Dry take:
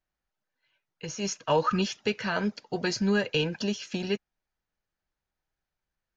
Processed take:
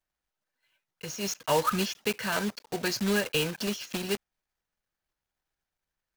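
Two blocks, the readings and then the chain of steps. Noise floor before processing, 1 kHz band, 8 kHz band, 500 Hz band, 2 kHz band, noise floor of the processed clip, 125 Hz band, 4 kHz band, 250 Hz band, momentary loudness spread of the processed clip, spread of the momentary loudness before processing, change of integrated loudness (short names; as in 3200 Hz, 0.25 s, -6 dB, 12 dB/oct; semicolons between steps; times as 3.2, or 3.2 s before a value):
under -85 dBFS, -0.5 dB, n/a, -1.5 dB, 0.0 dB, under -85 dBFS, -3.0 dB, +1.0 dB, -3.0 dB, 8 LU, 8 LU, -1.0 dB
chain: block floating point 3-bit; low shelf 460 Hz -3.5 dB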